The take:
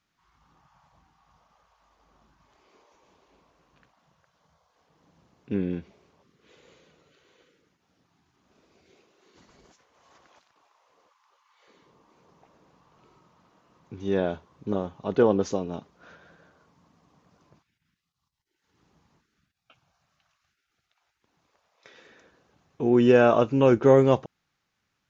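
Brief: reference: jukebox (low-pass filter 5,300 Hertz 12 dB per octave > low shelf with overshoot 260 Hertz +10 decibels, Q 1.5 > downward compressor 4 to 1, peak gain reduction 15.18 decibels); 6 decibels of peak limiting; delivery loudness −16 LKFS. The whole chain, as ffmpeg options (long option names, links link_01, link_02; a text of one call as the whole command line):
ffmpeg -i in.wav -af "alimiter=limit=-12dB:level=0:latency=1,lowpass=5300,lowshelf=frequency=260:width_type=q:width=1.5:gain=10,acompressor=threshold=-29dB:ratio=4,volume=17dB" out.wav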